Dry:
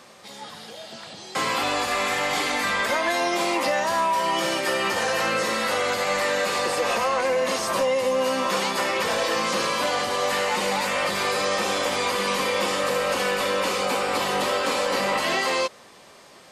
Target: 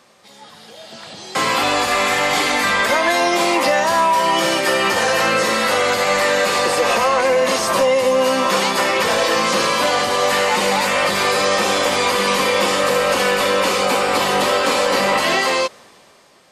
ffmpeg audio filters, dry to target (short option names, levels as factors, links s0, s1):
-af "dynaudnorm=f=150:g=13:m=3.55,volume=0.668"